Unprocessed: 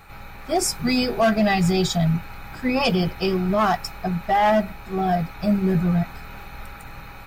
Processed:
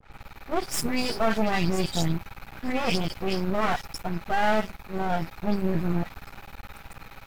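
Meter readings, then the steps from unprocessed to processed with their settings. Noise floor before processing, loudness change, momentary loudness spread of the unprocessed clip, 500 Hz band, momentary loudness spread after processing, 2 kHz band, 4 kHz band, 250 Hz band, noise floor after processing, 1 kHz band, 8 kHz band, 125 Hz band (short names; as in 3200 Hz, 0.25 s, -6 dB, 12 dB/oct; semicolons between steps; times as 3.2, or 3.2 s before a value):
-40 dBFS, -6.0 dB, 20 LU, -6.0 dB, 19 LU, -3.5 dB, -5.0 dB, -7.0 dB, -52 dBFS, -6.0 dB, -6.0 dB, -7.0 dB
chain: dispersion highs, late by 0.123 s, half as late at 2800 Hz; half-wave rectifier; gain -1.5 dB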